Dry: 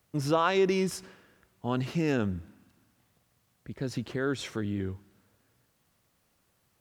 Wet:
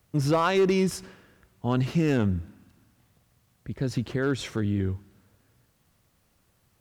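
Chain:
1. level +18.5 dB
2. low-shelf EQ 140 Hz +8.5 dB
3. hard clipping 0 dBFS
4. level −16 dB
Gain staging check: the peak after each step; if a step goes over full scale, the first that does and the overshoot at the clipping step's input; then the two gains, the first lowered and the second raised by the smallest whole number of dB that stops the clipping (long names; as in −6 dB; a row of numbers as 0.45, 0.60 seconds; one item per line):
+6.5, +6.0, 0.0, −16.0 dBFS
step 1, 6.0 dB
step 1 +12.5 dB, step 4 −10 dB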